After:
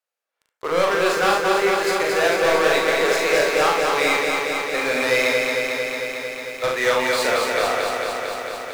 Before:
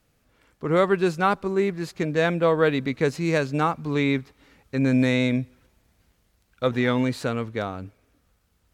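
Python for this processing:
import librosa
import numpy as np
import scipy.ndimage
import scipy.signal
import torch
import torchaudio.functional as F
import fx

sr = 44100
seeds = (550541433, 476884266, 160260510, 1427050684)

y = scipy.signal.sosfilt(scipy.signal.butter(4, 520.0, 'highpass', fs=sr, output='sos'), x)
y = fx.leveller(y, sr, passes=5)
y = fx.room_early_taps(y, sr, ms=(40, 71), db=(-3.0, -6.5))
y = fx.echo_crushed(y, sr, ms=225, feedback_pct=80, bits=7, wet_db=-3.5)
y = y * librosa.db_to_amplitude(-8.5)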